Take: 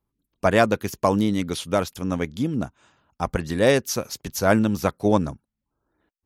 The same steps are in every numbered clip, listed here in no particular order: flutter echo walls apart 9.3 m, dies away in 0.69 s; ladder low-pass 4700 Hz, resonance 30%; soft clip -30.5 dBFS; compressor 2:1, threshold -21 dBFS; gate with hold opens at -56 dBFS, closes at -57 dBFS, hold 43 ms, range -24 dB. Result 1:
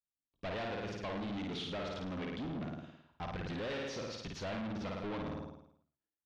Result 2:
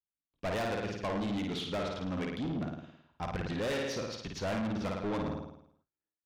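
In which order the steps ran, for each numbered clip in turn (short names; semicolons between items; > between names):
gate with hold > flutter echo > compressor > soft clip > ladder low-pass; flutter echo > gate with hold > ladder low-pass > compressor > soft clip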